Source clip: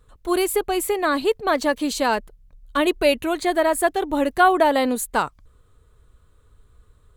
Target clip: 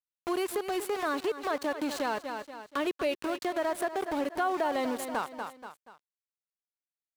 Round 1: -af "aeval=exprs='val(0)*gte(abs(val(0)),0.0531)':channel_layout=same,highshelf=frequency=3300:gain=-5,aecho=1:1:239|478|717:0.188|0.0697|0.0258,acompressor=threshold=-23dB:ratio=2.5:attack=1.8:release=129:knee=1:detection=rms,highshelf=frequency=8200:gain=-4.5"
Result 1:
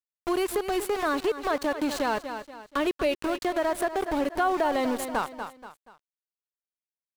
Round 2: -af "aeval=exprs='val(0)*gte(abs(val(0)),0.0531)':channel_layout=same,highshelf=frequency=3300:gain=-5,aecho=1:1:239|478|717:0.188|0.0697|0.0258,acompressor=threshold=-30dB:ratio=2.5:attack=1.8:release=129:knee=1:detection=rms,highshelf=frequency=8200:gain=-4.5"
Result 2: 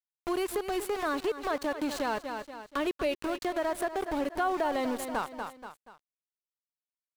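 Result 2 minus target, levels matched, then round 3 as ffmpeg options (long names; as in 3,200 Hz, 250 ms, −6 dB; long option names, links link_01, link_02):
125 Hz band +4.5 dB
-af "aeval=exprs='val(0)*gte(abs(val(0)),0.0531)':channel_layout=same,highpass=frequency=160:poles=1,highshelf=frequency=3300:gain=-5,aecho=1:1:239|478|717:0.188|0.0697|0.0258,acompressor=threshold=-30dB:ratio=2.5:attack=1.8:release=129:knee=1:detection=rms,highshelf=frequency=8200:gain=-4.5"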